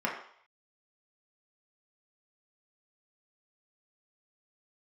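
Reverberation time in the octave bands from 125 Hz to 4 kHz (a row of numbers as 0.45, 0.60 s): 0.30, 0.40, 0.60, 0.65, 0.60, 0.65 s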